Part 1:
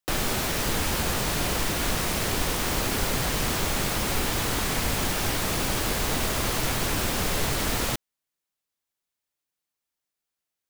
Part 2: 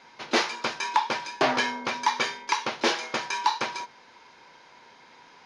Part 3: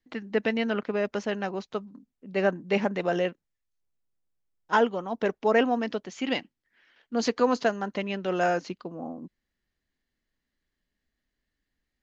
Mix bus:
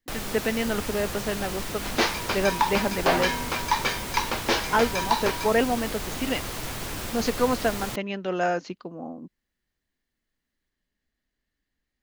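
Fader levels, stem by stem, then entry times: −7.0, 0.0, 0.0 decibels; 0.00, 1.65, 0.00 seconds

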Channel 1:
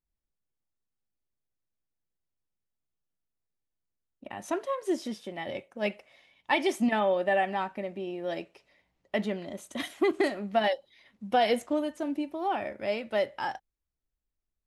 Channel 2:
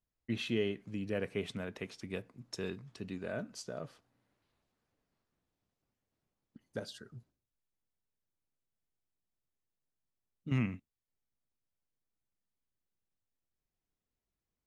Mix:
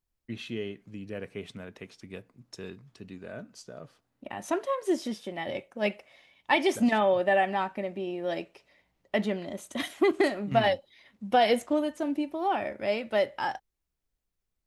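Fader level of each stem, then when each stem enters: +2.0, −2.0 decibels; 0.00, 0.00 seconds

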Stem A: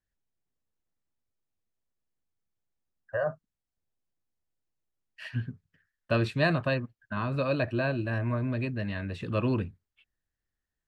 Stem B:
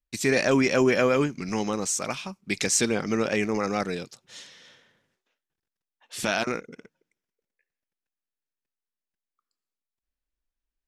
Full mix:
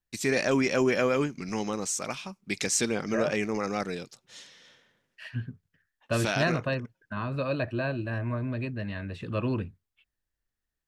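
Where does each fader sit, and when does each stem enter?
−1.5, −3.5 decibels; 0.00, 0.00 seconds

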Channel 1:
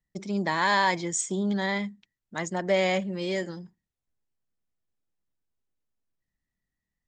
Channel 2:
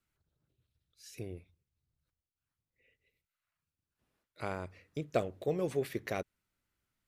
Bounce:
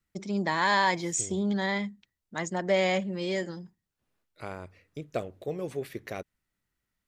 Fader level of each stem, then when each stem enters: −1.0, −1.0 decibels; 0.00, 0.00 seconds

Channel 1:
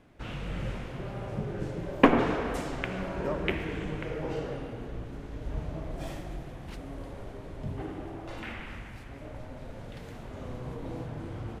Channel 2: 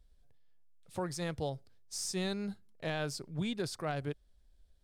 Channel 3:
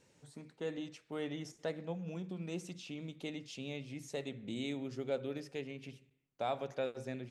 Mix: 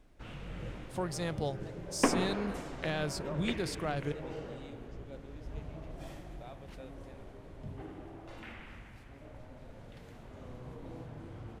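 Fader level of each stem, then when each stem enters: −8.0, +1.0, −14.0 decibels; 0.00, 0.00, 0.00 seconds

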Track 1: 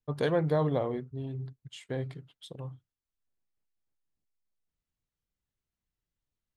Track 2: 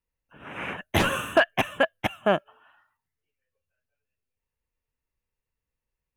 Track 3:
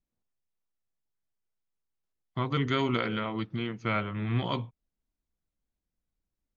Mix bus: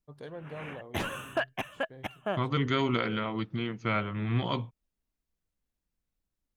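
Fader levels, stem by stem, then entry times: −15.5, −10.5, 0.0 decibels; 0.00, 0.00, 0.00 seconds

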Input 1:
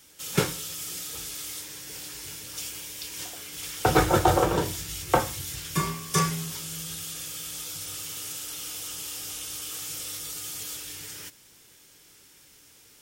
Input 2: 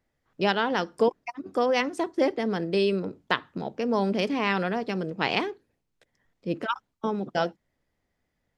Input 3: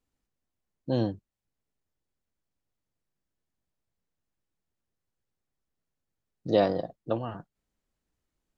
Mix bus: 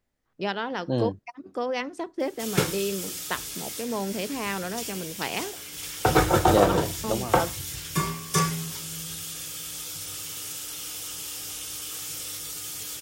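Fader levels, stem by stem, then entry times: +0.5, −5.0, +1.0 decibels; 2.20, 0.00, 0.00 seconds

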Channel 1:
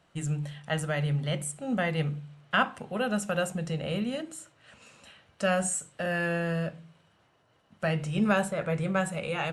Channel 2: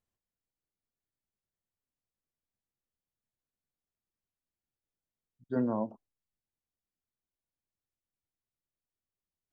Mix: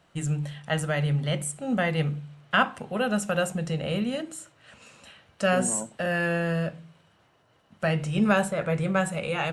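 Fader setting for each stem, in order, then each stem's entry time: +3.0, −3.5 decibels; 0.00, 0.00 seconds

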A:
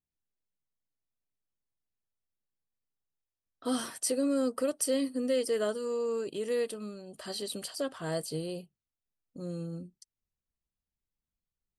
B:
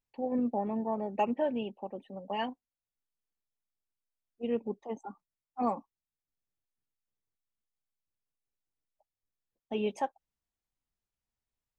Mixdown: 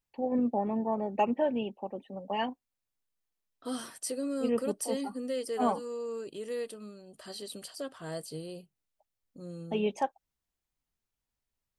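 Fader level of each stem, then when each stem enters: −5.0, +2.0 decibels; 0.00, 0.00 seconds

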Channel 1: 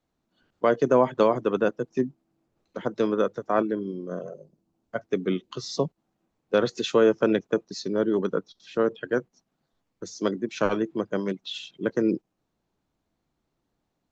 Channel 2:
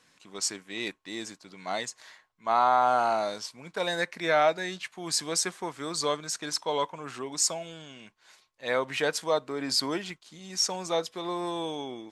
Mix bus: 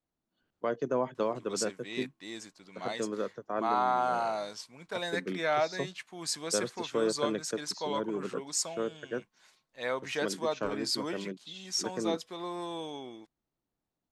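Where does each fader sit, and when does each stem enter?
−10.5, −5.5 decibels; 0.00, 1.15 seconds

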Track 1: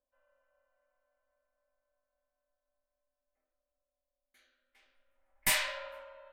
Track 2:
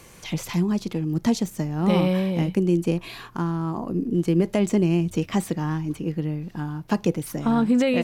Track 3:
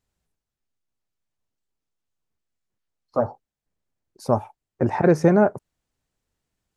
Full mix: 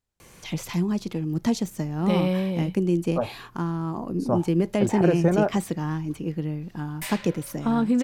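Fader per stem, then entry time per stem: −6.5, −2.0, −5.0 decibels; 1.55, 0.20, 0.00 seconds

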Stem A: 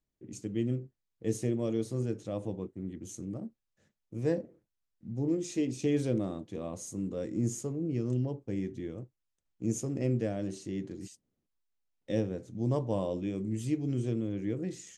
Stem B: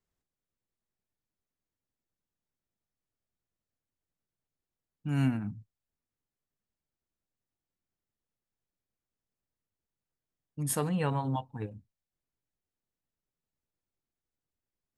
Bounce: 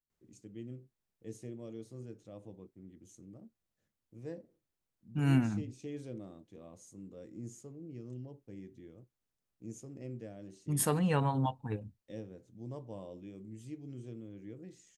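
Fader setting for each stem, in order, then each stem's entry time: −14.0, +0.5 decibels; 0.00, 0.10 seconds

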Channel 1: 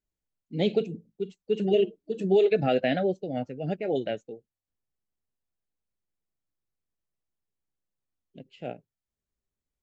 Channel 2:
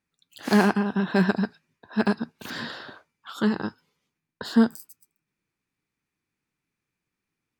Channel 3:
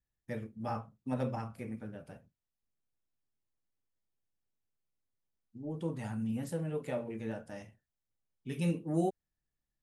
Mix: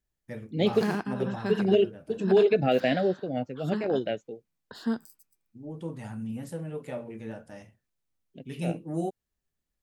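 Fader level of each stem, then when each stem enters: +0.5, −10.5, 0.0 decibels; 0.00, 0.30, 0.00 seconds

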